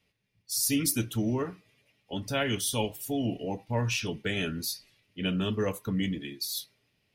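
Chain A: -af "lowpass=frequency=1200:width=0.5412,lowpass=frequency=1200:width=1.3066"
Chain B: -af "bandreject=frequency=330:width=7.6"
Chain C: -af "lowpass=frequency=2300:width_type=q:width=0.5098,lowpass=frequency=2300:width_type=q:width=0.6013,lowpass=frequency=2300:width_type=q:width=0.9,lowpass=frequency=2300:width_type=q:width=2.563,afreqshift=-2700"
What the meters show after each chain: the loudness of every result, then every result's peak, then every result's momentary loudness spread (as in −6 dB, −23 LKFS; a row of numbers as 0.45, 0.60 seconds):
−32.5, −31.0, −29.0 LKFS; −17.5, −11.0, −16.0 dBFS; 10, 9, 10 LU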